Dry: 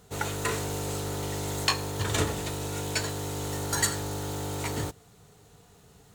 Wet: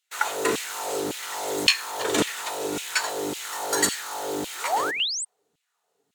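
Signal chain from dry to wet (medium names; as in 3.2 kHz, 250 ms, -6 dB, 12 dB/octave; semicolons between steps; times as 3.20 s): gate -48 dBFS, range -21 dB; painted sound rise, 4.55–5.25 s, 310–9000 Hz -33 dBFS; LFO high-pass saw down 1.8 Hz 230–2900 Hz; trim +3.5 dB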